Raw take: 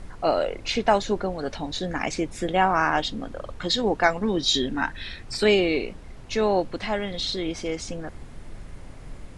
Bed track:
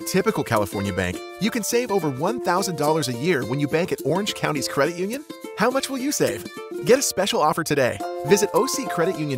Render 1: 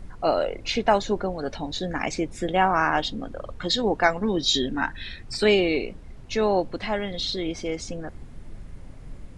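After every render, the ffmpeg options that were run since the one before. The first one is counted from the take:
-af "afftdn=nr=6:nf=-42"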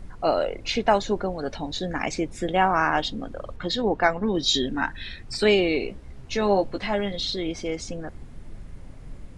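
-filter_complex "[0:a]asettb=1/sr,asplit=3[a][b][c];[a]atrim=end=3.564[d];[b]atrim=start=3.56:end=4.35,asetpts=PTS-STARTPTS,afade=t=in:d=0.004:c=qsin,afade=t=out:st=0.786:d=0.004:c=qsin,aemphasis=mode=reproduction:type=50kf[e];[c]atrim=start=4.346[f];[d][e]acrossfade=d=0.004:c1=hsin:c2=qsin[g];[g][f]acrossfade=d=0.004:c1=qsin:c2=hsin,asettb=1/sr,asplit=3[h][i][j];[h]atrim=end=5.804[k];[i]atrim=start=5.8:end=7.16,asetpts=PTS-STARTPTS,afade=t=in:d=0.004:c=qsin,afade=t=out:st=1.356:d=0.004:c=qsin,asplit=2[l][m];[m]adelay=15,volume=-6dB[n];[l][n]amix=inputs=2:normalize=0,atrim=end_sample=59976[o];[j]atrim=start=7.156[p];[k][o]acrossfade=d=0.004:c1=hsin:c2=qsin[q];[q][p]acrossfade=d=0.004:c1=qsin:c2=hsin"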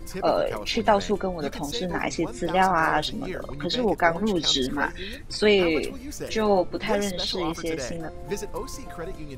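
-filter_complex "[1:a]volume=-14dB[a];[0:a][a]amix=inputs=2:normalize=0"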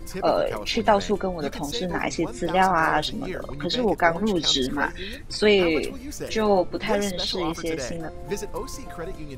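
-af "volume=1dB"

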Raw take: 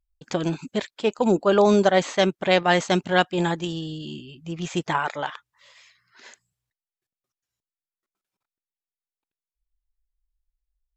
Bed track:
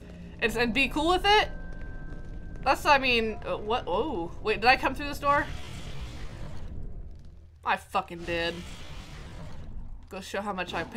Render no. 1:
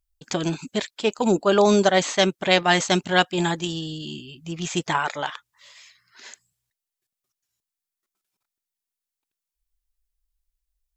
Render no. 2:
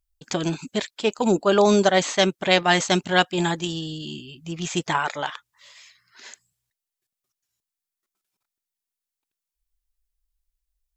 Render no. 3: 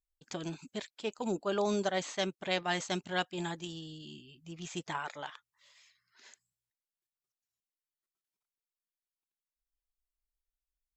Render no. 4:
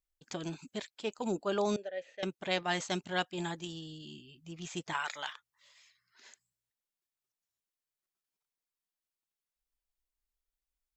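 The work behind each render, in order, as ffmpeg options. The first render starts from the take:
-af "highshelf=f=3.4k:g=9,bandreject=f=520:w=12"
-af anull
-af "volume=-14dB"
-filter_complex "[0:a]asettb=1/sr,asplit=3[a][b][c];[a]atrim=end=1.764[d];[b]atrim=start=1.76:end=2.23,asetpts=PTS-STARTPTS,afade=t=in:d=0.004:c=qsin,afade=t=out:st=0.466:d=0.004:c=qsin,asplit=3[e][f][g];[e]bandpass=f=530:t=q:w=8,volume=0dB[h];[f]bandpass=f=1.84k:t=q:w=8,volume=-6dB[i];[g]bandpass=f=2.48k:t=q:w=8,volume=-9dB[j];[h][i][j]amix=inputs=3:normalize=0[k];[c]atrim=start=2.226[l];[d][k]acrossfade=d=0.004:c1=hsin:c2=qsin[m];[m][l]acrossfade=d=0.004:c1=qsin:c2=hsin,asettb=1/sr,asplit=3[n][o][p];[n]atrim=end=4.934[q];[o]atrim=start=4.93:end=5.33,asetpts=PTS-STARTPTS,afade=t=in:d=0.004:c=qsin,afade=t=out:st=0.396:d=0.004:c=qsin,tiltshelf=f=860:g=-9.5[r];[p]atrim=start=5.326[s];[q][r]acrossfade=d=0.004:c1=hsin:c2=qsin[t];[t][s]acrossfade=d=0.004:c1=qsin:c2=hsin"

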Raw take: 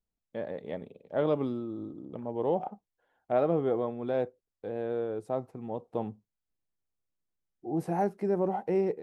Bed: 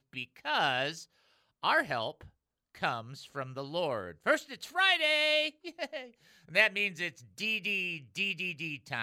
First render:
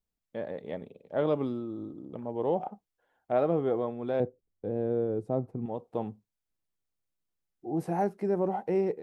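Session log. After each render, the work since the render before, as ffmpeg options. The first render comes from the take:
-filter_complex "[0:a]asettb=1/sr,asplit=3[a][b][c];[a]atrim=end=4.204[d];[b]atrim=start=4.2:end=5.66,asetpts=PTS-STARTPTS,afade=t=in:d=0.004:c=qsin,afade=t=out:st=1.456:d=0.004:c=qsin,tiltshelf=f=630:g=9.5[e];[c]atrim=start=5.656[f];[d][e]acrossfade=d=0.004:c1=hsin:c2=qsin[g];[g][f]acrossfade=d=0.004:c1=qsin:c2=hsin"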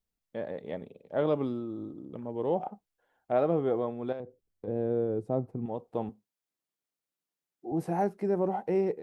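-filter_complex "[0:a]asettb=1/sr,asplit=3[a][b][c];[a]atrim=end=2.034[d];[b]atrim=start=2.03:end=2.51,asetpts=PTS-STARTPTS,afade=t=in:d=0.004:c=qsin,afade=t=out:st=0.476:d=0.004:c=qsin,equalizer=f=740:t=o:w=0.77:g=-5[e];[c]atrim=start=2.506[f];[d][e]acrossfade=d=0.004:c1=hsin:c2=qsin[g];[g][f]acrossfade=d=0.004:c1=qsin:c2=hsin,asettb=1/sr,asplit=3[h][i][j];[h]atrim=end=4.124[k];[i]atrim=start=4.12:end=4.68,asetpts=PTS-STARTPTS,afade=t=in:d=0.004:c=qsin,afade=t=out:st=0.556:d=0.004:c=qsin,acompressor=threshold=-34dB:ratio=12:attack=3.2:release=140:knee=1:detection=peak[l];[j]atrim=start=4.676[m];[k][l]acrossfade=d=0.004:c1=hsin:c2=qsin[n];[n][m]acrossfade=d=0.004:c1=qsin:c2=hsin,asettb=1/sr,asplit=3[o][p][q];[o]atrim=end=6.094[r];[p]atrim=start=6.09:end=7.72,asetpts=PTS-STARTPTS,afade=t=in:d=0.004:c=qsin,afade=t=out:st=1.626:d=0.004:c=qsin,highpass=210[s];[q]atrim=start=7.716[t];[r][s]acrossfade=d=0.004:c1=hsin:c2=qsin[u];[u][t]acrossfade=d=0.004:c1=qsin:c2=hsin"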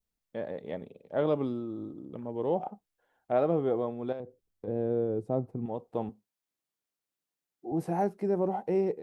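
-af "adynamicequalizer=threshold=0.00398:dfrequency=1700:dqfactor=1.2:tfrequency=1700:tqfactor=1.2:attack=5:release=100:ratio=0.375:range=2:mode=cutabove:tftype=bell"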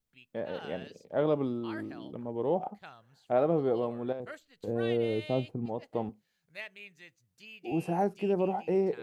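-filter_complex "[1:a]volume=-17.5dB[a];[0:a][a]amix=inputs=2:normalize=0"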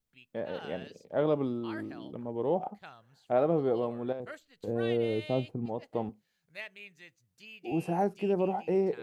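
-af anull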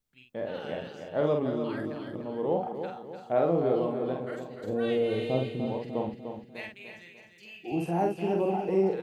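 -filter_complex "[0:a]asplit=2[a][b];[b]adelay=47,volume=-4dB[c];[a][c]amix=inputs=2:normalize=0,aecho=1:1:298|596|894|1192|1490:0.398|0.179|0.0806|0.0363|0.0163"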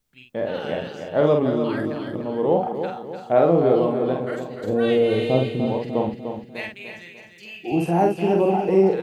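-af "volume=8.5dB"

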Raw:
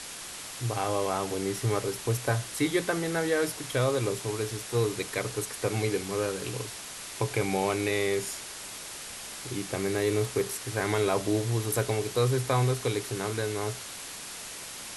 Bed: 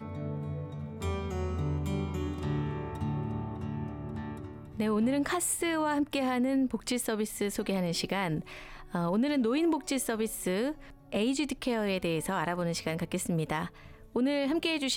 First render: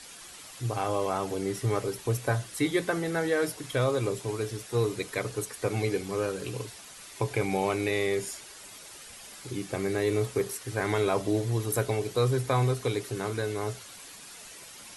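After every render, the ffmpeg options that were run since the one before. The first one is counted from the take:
-af "afftdn=nr=9:nf=-41"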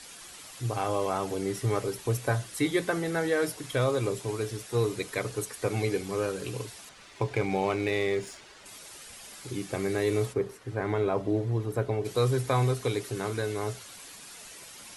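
-filter_complex "[0:a]asettb=1/sr,asplit=3[a][b][c];[a]atrim=end=6.894[d];[b]atrim=start=6.89:end=8.66,asetpts=PTS-STARTPTS,afade=t=in:d=0.004:c=qsin,afade=t=out:st=1.766:d=0.004:c=qsin,adynamicsmooth=sensitivity=6:basefreq=4.6k[e];[c]atrim=start=8.656[f];[d][e]acrossfade=d=0.004:c1=hsin:c2=qsin[g];[g][f]acrossfade=d=0.004:c1=qsin:c2=hsin,asplit=3[h][i][j];[h]afade=t=out:st=10.32:d=0.02[k];[i]lowpass=f=1.1k:p=1,afade=t=in:st=10.32:d=0.02,afade=t=out:st=12.04:d=0.02[l];[j]afade=t=in:st=12.04:d=0.02[m];[k][l][m]amix=inputs=3:normalize=0"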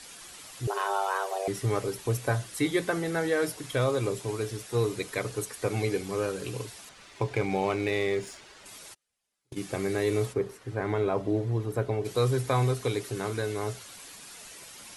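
-filter_complex "[0:a]asettb=1/sr,asplit=3[a][b][c];[a]atrim=end=0.674[d];[b]atrim=start=0.67:end=1.48,asetpts=PTS-STARTPTS,afade=t=in:d=0.004:c=qsin,afade=t=out:st=0.806:d=0.004:c=qsin,afreqshift=290[e];[c]atrim=start=1.476[f];[d][e]acrossfade=d=0.004:c1=hsin:c2=qsin[g];[g][f]acrossfade=d=0.004:c1=qsin:c2=hsin,asplit=3[h][i][j];[h]afade=t=out:st=8.93:d=0.02[k];[i]agate=range=-37dB:threshold=-34dB:ratio=16:release=100:detection=peak,afade=t=in:st=8.93:d=0.02,afade=t=out:st=9.56:d=0.02[l];[j]afade=t=in:st=9.56:d=0.02[m];[k][l][m]amix=inputs=3:normalize=0"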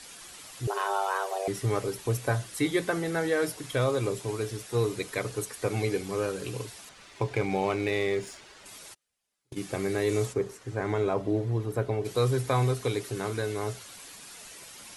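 -filter_complex "[0:a]asettb=1/sr,asplit=3[a][b][c];[a]atrim=end=10.094[d];[b]atrim=start=10.09:end=11.14,asetpts=PTS-STARTPTS,afade=t=in:d=0.004:c=qsin,afade=t=out:st=1.046:d=0.004:c=qsin,equalizer=f=6.9k:t=o:w=0.72:g=6.5[e];[c]atrim=start=11.136[f];[d][e]acrossfade=d=0.004:c1=hsin:c2=qsin[g];[g][f]acrossfade=d=0.004:c1=qsin:c2=hsin"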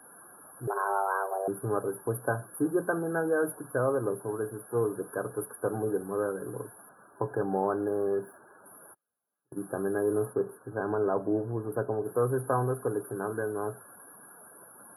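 -af "afftfilt=real='re*(1-between(b*sr/4096,1700,9600))':imag='im*(1-between(b*sr/4096,1700,9600))':win_size=4096:overlap=0.75,highpass=170"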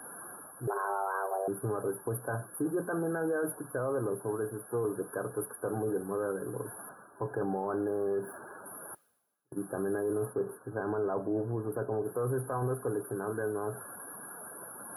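-af "alimiter=limit=-24dB:level=0:latency=1:release=12,areverse,acompressor=mode=upward:threshold=-37dB:ratio=2.5,areverse"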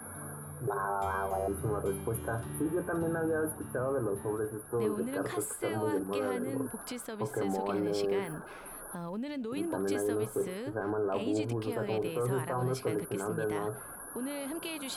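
-filter_complex "[1:a]volume=-9.5dB[a];[0:a][a]amix=inputs=2:normalize=0"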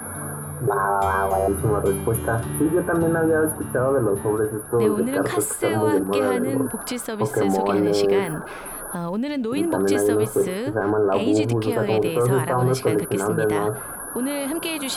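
-af "volume=12dB"

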